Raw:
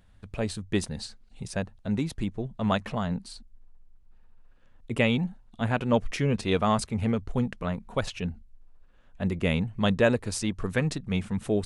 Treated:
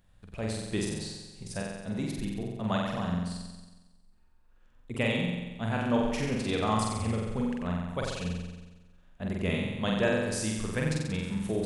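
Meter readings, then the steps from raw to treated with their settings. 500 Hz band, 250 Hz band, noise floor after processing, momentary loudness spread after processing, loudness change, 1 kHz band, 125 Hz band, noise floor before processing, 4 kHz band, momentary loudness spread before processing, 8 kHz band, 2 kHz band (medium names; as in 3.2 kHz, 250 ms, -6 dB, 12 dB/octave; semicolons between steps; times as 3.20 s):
-3.5 dB, -2.5 dB, -60 dBFS, 12 LU, -3.0 dB, -2.5 dB, -3.0 dB, -56 dBFS, -1.5 dB, 11 LU, 0.0 dB, -2.5 dB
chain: treble shelf 7.2 kHz +5 dB; flutter echo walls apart 7.8 m, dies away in 1.2 s; trim -6.5 dB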